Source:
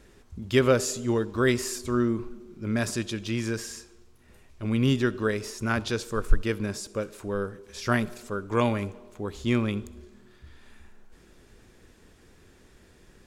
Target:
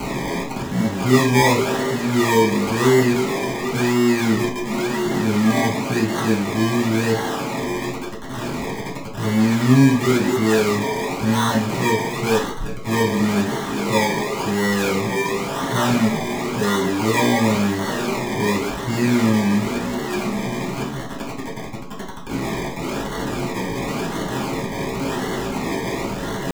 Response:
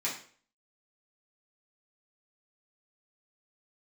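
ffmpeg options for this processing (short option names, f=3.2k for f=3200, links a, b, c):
-filter_complex "[0:a]aeval=exprs='val(0)+0.5*0.0891*sgn(val(0))':c=same,lowpass=f=3.6k:p=1,asplit=2[a][b];[b]alimiter=limit=-17.5dB:level=0:latency=1:release=53,volume=-0.5dB[c];[a][c]amix=inputs=2:normalize=0,atempo=0.5,acrossover=split=200[d][e];[e]acrusher=samples=25:mix=1:aa=0.000001:lfo=1:lforange=15:lforate=0.94[f];[d][f]amix=inputs=2:normalize=0,asoftclip=type=tanh:threshold=-4.5dB[g];[1:a]atrim=start_sample=2205,atrim=end_sample=4410[h];[g][h]afir=irnorm=-1:irlink=0,aeval=exprs='val(0)+0.00708*sin(2*PI*1100*n/s)':c=same,volume=-4dB"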